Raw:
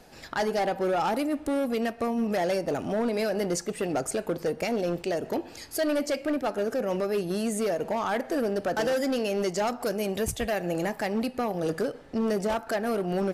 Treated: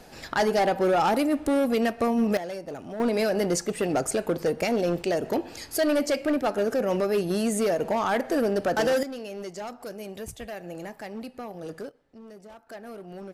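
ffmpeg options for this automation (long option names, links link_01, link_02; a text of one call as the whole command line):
ffmpeg -i in.wav -af "asetnsamples=nb_out_samples=441:pad=0,asendcmd='2.37 volume volume -8dB;3 volume volume 3dB;9.03 volume volume -9dB;11.89 volume volume -19.5dB;12.7 volume volume -13dB',volume=4dB" out.wav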